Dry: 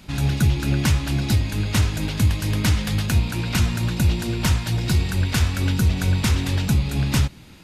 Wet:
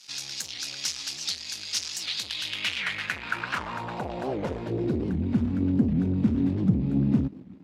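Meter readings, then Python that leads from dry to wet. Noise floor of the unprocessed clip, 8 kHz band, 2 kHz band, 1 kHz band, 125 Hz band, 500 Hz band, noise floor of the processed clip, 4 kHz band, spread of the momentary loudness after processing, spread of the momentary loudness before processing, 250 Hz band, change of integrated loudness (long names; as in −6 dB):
−44 dBFS, −4.5 dB, −4.0 dB, −3.5 dB, −11.5 dB, −1.0 dB, −43 dBFS, −2.0 dB, 8 LU, 2 LU, −1.0 dB, −6.5 dB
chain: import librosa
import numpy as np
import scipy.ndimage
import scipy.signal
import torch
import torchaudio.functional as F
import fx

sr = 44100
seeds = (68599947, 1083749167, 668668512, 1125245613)

y = fx.leveller(x, sr, passes=3)
y = fx.filter_sweep_bandpass(y, sr, from_hz=5400.0, to_hz=240.0, start_s=1.97, end_s=5.25, q=2.9)
y = fx.record_warp(y, sr, rpm=78.0, depth_cents=250.0)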